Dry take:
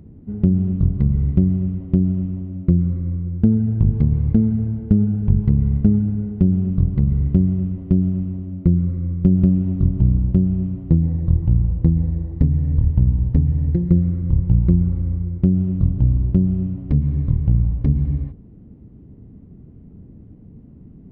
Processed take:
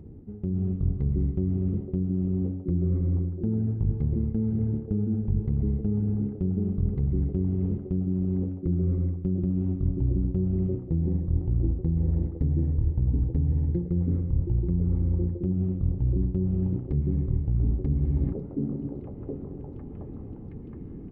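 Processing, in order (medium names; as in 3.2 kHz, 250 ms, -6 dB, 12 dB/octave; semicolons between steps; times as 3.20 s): bass shelf 320 Hz -11 dB; repeats whose band climbs or falls 721 ms, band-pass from 290 Hz, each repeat 0.7 oct, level -2 dB; reverse; compression 10:1, threshold -33 dBFS, peak gain reduction 16.5 dB; reverse; tilt shelf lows +7.5 dB, about 780 Hz; comb 2.4 ms, depth 32%; level rider gain up to 5 dB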